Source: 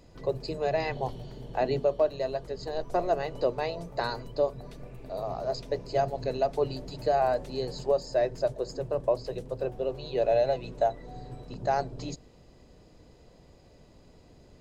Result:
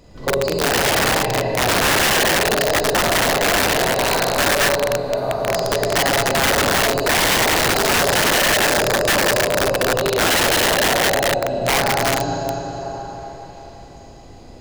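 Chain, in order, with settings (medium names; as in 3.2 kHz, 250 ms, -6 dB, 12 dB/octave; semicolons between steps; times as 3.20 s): repeats whose band climbs or falls 368 ms, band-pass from 150 Hz, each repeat 1.4 oct, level -8 dB; Schroeder reverb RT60 3.8 s, combs from 31 ms, DRR -6 dB; integer overflow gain 18.5 dB; trim +7 dB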